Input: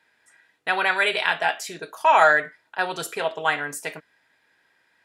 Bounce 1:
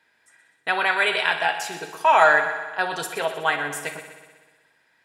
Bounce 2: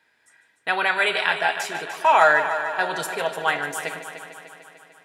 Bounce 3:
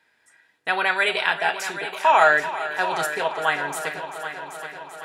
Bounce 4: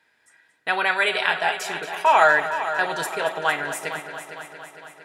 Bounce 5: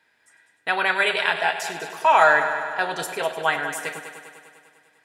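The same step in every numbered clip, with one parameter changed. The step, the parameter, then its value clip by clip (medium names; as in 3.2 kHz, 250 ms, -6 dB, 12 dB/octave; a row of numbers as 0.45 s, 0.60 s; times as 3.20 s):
multi-head delay, time: 62 ms, 149 ms, 389 ms, 229 ms, 100 ms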